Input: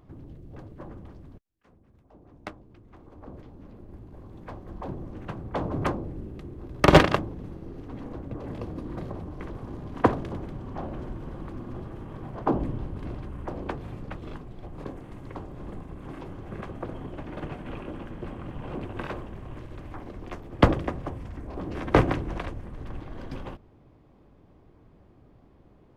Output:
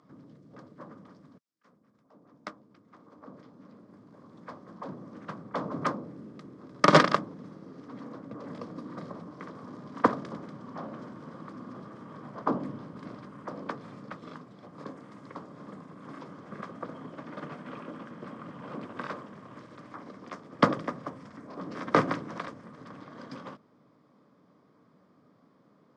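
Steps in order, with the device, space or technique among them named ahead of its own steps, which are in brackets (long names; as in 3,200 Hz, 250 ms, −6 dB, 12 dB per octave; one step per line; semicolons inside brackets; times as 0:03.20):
television speaker (loudspeaker in its box 170–8,500 Hz, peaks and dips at 360 Hz −9 dB, 780 Hz −7 dB, 1,200 Hz +6 dB, 2,700 Hz −8 dB, 5,100 Hz +6 dB)
level −1 dB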